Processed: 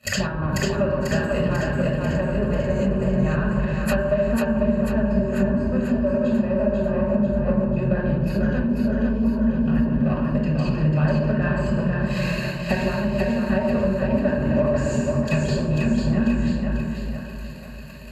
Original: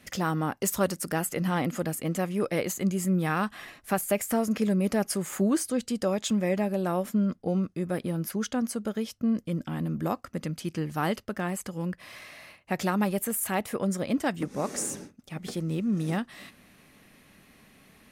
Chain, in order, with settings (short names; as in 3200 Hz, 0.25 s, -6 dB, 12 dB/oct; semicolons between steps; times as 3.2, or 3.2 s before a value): octaver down 2 oct, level -6 dB; sample leveller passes 3; ripple EQ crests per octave 1.4, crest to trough 15 dB; transient shaper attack +4 dB, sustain -9 dB; shoebox room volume 3300 m³, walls furnished, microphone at 6.5 m; treble ducked by the level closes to 1900 Hz, closed at -6 dBFS; compressor 5:1, threshold -21 dBFS, peak gain reduction 17.5 dB; HPF 46 Hz; high shelf 8800 Hz -8 dB; notch comb 340 Hz; split-band echo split 410 Hz, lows 0.35 s, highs 0.493 s, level -3.5 dB; gain +1.5 dB